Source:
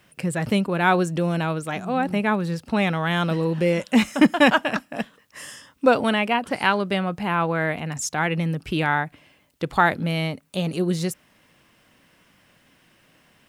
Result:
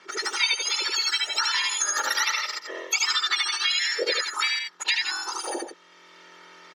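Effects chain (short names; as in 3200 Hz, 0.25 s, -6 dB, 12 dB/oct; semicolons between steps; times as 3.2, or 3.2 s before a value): spectrum mirrored in octaves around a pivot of 1300 Hz; LPF 2600 Hz 24 dB/oct; low shelf 230 Hz -11.5 dB; speed mistake 7.5 ips tape played at 15 ips; on a send: loudspeakers at several distances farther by 25 m -1 dB, 55 m -8 dB; on the sum: spectral noise reduction 6 dB; tilt +2.5 dB/oct; compressor, threshold -25 dBFS, peak gain reduction 10.5 dB; comb 2.2 ms, depth 56%; three-band squash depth 40%; gain +3 dB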